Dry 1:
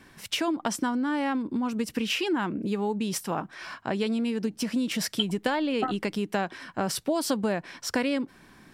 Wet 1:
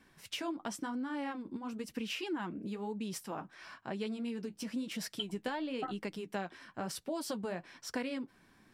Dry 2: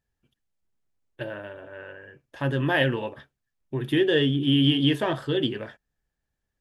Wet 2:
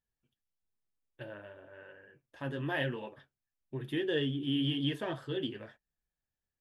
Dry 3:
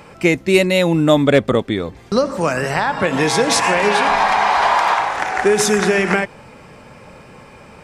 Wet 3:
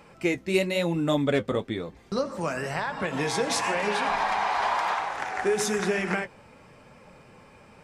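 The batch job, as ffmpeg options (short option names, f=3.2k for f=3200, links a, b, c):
-af "flanger=delay=3.6:depth=8.6:regen=-45:speed=1:shape=triangular,volume=-7dB"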